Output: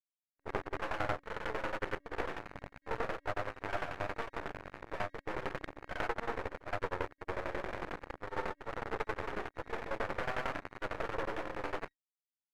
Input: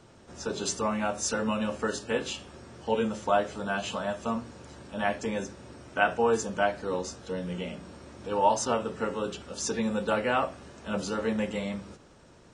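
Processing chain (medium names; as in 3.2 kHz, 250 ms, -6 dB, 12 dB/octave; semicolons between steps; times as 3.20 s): CVSD coder 16 kbps; level rider gain up to 4 dB; peak limiter -19.5 dBFS, peak gain reduction 11 dB; reverse; compression 20:1, threshold -35 dBFS, peak gain reduction 12.5 dB; reverse; word length cut 6-bit, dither none; granulator, spray 100 ms; FFT band-pass 280–1900 Hz; half-wave rectifier; tremolo saw down 11 Hz, depth 90%; loudspeaker Doppler distortion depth 0.84 ms; trim +12 dB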